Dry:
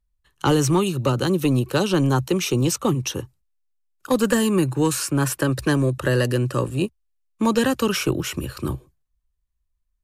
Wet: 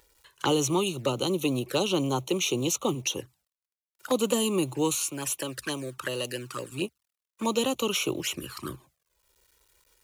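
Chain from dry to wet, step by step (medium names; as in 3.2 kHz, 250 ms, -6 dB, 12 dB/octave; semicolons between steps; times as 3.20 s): companding laws mixed up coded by mu; high-pass 580 Hz 6 dB/octave, from 4.95 s 1.5 kHz, from 6.72 s 690 Hz; upward compressor, threshold -46 dBFS; touch-sensitive flanger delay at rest 2.2 ms, full sweep at -25 dBFS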